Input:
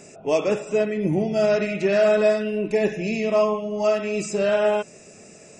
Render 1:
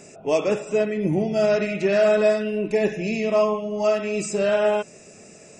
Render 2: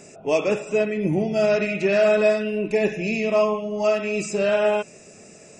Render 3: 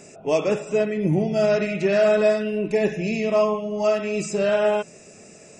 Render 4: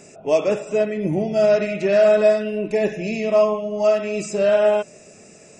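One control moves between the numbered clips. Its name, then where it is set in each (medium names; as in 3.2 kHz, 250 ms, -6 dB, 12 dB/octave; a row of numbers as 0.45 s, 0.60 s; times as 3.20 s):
dynamic bell, frequency: 8.2 kHz, 2.5 kHz, 160 Hz, 610 Hz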